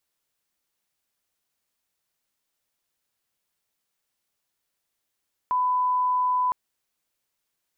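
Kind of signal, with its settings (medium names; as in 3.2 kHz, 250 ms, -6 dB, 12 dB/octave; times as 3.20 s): line-up tone -20 dBFS 1.01 s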